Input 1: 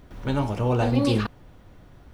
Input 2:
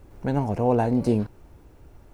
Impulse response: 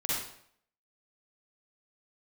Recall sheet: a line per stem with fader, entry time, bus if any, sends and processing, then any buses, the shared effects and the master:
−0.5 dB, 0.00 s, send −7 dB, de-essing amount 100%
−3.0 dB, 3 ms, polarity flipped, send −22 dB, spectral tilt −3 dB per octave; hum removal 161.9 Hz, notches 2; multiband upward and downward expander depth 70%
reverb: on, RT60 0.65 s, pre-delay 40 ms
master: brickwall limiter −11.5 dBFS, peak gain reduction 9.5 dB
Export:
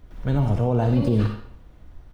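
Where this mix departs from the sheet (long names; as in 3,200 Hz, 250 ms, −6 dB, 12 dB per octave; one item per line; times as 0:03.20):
stem 1 −0.5 dB → −8.0 dB
stem 2: polarity flipped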